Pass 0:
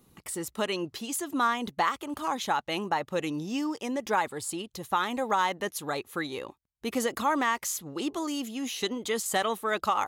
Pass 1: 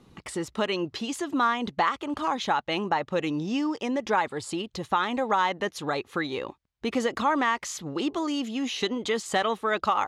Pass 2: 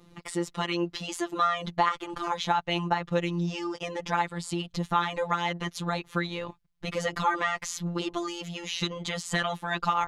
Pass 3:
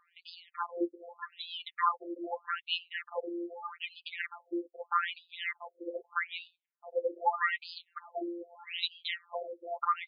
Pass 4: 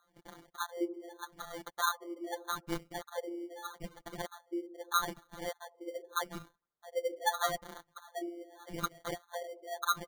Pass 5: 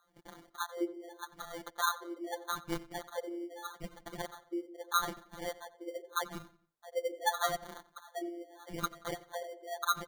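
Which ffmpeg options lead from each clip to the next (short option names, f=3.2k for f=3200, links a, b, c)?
-filter_complex "[0:a]lowpass=4.8k,asplit=2[a][b];[b]acompressor=threshold=-36dB:ratio=6,volume=1.5dB[c];[a][c]amix=inputs=2:normalize=0"
-af "asubboost=boost=8:cutoff=110,afftfilt=real='hypot(re,im)*cos(PI*b)':imag='0':win_size=1024:overlap=0.75,volume=3dB"
-af "afftfilt=real='re*between(b*sr/1024,410*pow(3600/410,0.5+0.5*sin(2*PI*0.81*pts/sr))/1.41,410*pow(3600/410,0.5+0.5*sin(2*PI*0.81*pts/sr))*1.41)':imag='im*between(b*sr/1024,410*pow(3600/410,0.5+0.5*sin(2*PI*0.81*pts/sr))/1.41,410*pow(3600/410,0.5+0.5*sin(2*PI*0.81*pts/sr))*1.41)':win_size=1024:overlap=0.75"
-filter_complex "[0:a]acrossover=split=600[a][b];[a]aecho=1:1:77|154|231|308|385|462|539:0.316|0.183|0.106|0.0617|0.0358|0.0208|0.012[c];[b]acrusher=samples=17:mix=1:aa=0.000001[d];[c][d]amix=inputs=2:normalize=0,volume=-2dB"
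-filter_complex "[0:a]asplit=2[a][b];[b]adelay=90,lowpass=f=4.6k:p=1,volume=-18dB,asplit=2[c][d];[d]adelay=90,lowpass=f=4.6k:p=1,volume=0.4,asplit=2[e][f];[f]adelay=90,lowpass=f=4.6k:p=1,volume=0.4[g];[a][c][e][g]amix=inputs=4:normalize=0"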